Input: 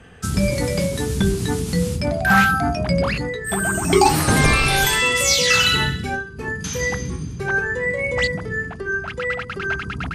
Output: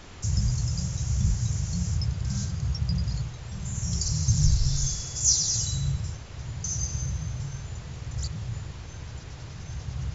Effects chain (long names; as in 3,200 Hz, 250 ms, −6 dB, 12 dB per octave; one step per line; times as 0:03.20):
elliptic band-stop filter 130–5,800 Hz
background noise pink −46 dBFS
linear-phase brick-wall low-pass 7,500 Hz